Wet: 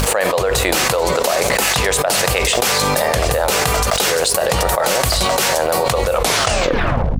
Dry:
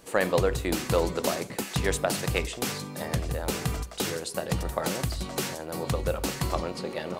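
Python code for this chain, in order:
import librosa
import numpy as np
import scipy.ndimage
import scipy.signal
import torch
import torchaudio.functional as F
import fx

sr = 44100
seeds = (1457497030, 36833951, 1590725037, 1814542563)

y = fx.tape_stop_end(x, sr, length_s=1.08)
y = np.sign(y) * np.maximum(np.abs(y) - 10.0 ** (-54.0 / 20.0), 0.0)
y = fx.dmg_buzz(y, sr, base_hz=50.0, harmonics=5, level_db=-49.0, tilt_db=-4, odd_only=False)
y = fx.low_shelf_res(y, sr, hz=400.0, db=-10.5, q=1.5)
y = fx.env_flatten(y, sr, amount_pct=100)
y = y * librosa.db_to_amplitude(3.5)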